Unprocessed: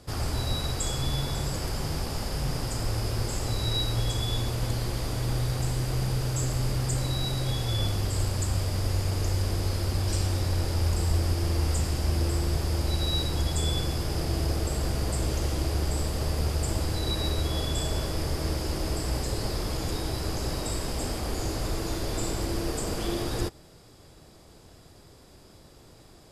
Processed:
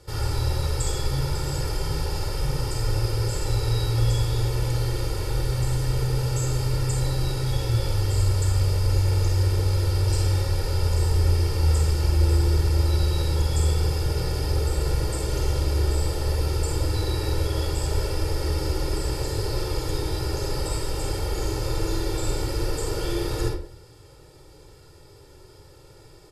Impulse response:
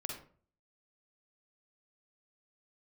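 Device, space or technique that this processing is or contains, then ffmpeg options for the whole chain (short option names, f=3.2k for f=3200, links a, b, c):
microphone above a desk: -filter_complex "[0:a]aecho=1:1:2.2:0.89[a];[1:a]atrim=start_sample=2205[b];[a][b]afir=irnorm=-1:irlink=0"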